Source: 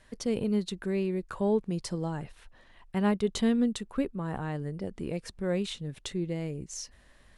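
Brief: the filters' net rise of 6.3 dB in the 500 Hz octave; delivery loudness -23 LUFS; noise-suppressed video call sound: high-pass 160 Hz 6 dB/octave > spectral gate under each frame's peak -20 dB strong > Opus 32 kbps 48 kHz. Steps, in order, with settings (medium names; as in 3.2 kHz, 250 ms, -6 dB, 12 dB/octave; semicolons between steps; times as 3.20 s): high-pass 160 Hz 6 dB/octave; peaking EQ 500 Hz +8.5 dB; spectral gate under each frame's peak -20 dB strong; trim +6 dB; Opus 32 kbps 48 kHz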